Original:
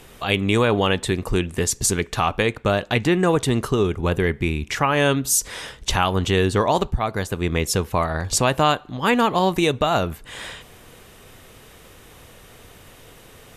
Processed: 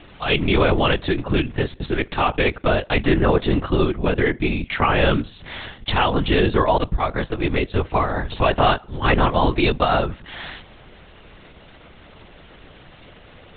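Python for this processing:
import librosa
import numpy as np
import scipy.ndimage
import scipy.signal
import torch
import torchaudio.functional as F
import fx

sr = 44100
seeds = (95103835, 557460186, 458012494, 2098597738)

y = fx.lpc_vocoder(x, sr, seeds[0], excitation='whisper', order=10)
y = y * 10.0 ** (1.5 / 20.0)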